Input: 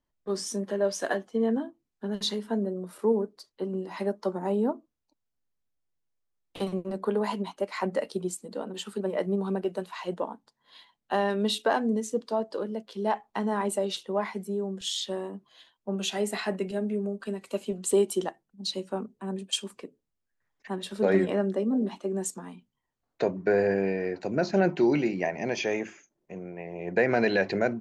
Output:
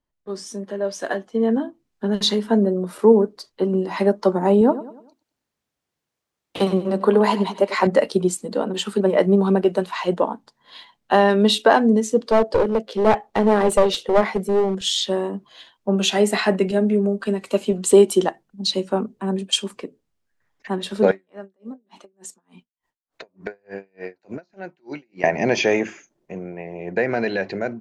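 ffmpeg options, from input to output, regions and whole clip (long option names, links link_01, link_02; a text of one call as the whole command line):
ffmpeg -i in.wav -filter_complex "[0:a]asettb=1/sr,asplit=3[link_01][link_02][link_03];[link_01]atrim=end=4.614[link_04];[link_02]atrim=start=4.61:end=7.87,asetpts=PTS-STARTPTS,afade=type=in:duration=0.004:curve=qsin,afade=type=out:start_time=3.256:duration=0.004:curve=qsin,highpass=frequency=140:poles=1,aecho=1:1:97|194|291|388:0.178|0.0765|0.0329|0.0141,atrim=end_sample=143766[link_05];[link_03]atrim=start=7.866[link_06];[link_04][link_05]acrossfade=duration=0.004:curve1=hsin:curve2=qsin[link_07];[link_07][link_06]acrossfade=duration=0.004:curve1=qsin:curve2=hsin,asettb=1/sr,asplit=3[link_08][link_09][link_10];[link_08]atrim=end=12.254[link_11];[link_09]atrim=start=12.25:end=14.75,asetpts=PTS-STARTPTS,afade=type=in:duration=0.004:curve=qsin,afade=type=out:start_time=2.496:duration=0.004:curve=qsin,equalizer=frequency=500:width_type=o:width=0.81:gain=8,bandreject=frequency=1000:width=7.6,aeval=exprs='clip(val(0),-1,0.0376)':channel_layout=same[link_12];[link_10]atrim=start=14.746[link_13];[link_11][link_12]acrossfade=duration=0.004:curve1=hsin:curve2=qsin[link_14];[link_14][link_13]acrossfade=duration=0.004:curve1=qsin:curve2=hsin,asettb=1/sr,asplit=3[link_15][link_16][link_17];[link_15]atrim=end=21.114[link_18];[link_16]atrim=start=21.11:end=25.24,asetpts=PTS-STARTPTS,afade=type=in:duration=0.004:curve=qsin,afade=type=out:start_time=4.126:duration=0.004:curve=qsin,lowshelf=frequency=440:gain=-8,acompressor=threshold=-36dB:ratio=20:attack=3.2:release=140:knee=1:detection=peak,aeval=exprs='val(0)*pow(10,-39*(0.5-0.5*cos(2*PI*3.4*n/s))/20)':channel_layout=same[link_19];[link_17]atrim=start=25.236[link_20];[link_18][link_19]acrossfade=duration=0.004:curve1=hsin:curve2=qsin[link_21];[link_21][link_20]acrossfade=duration=0.004:curve1=qsin:curve2=hsin,dynaudnorm=framelen=150:gausssize=21:maxgain=13dB,highshelf=frequency=9500:gain=-8" out.wav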